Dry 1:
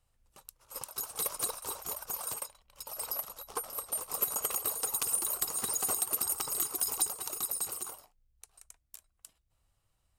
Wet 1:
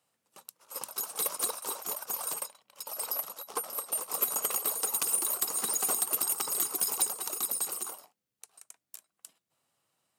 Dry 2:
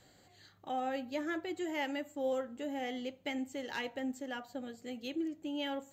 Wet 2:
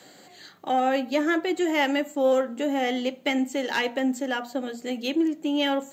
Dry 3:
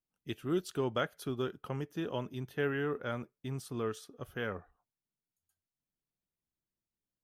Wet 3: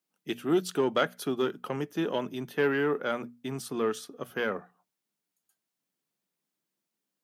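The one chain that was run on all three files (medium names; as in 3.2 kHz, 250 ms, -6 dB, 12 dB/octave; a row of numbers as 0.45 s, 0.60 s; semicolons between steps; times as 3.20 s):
single-diode clipper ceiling -22 dBFS; high-pass 170 Hz 24 dB/octave; hum notches 60/120/180/240 Hz; peak normalisation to -12 dBFS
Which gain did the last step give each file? +3.5 dB, +13.5 dB, +8.5 dB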